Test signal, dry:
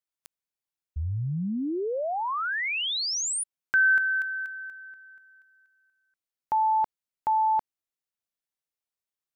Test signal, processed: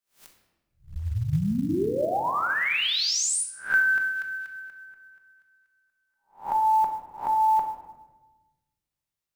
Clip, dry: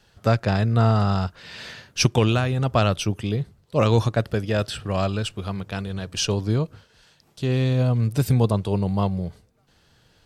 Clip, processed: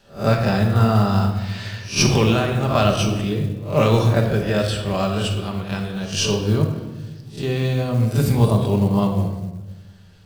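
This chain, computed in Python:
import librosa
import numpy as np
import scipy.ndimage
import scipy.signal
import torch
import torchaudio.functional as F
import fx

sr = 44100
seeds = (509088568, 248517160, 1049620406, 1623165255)

y = fx.spec_swells(x, sr, rise_s=0.32)
y = fx.room_shoebox(y, sr, seeds[0], volume_m3=650.0, walls='mixed', distance_m=1.2)
y = fx.quant_float(y, sr, bits=4)
y = fx.echo_bbd(y, sr, ms=90, stages=2048, feedback_pct=56, wet_db=-24)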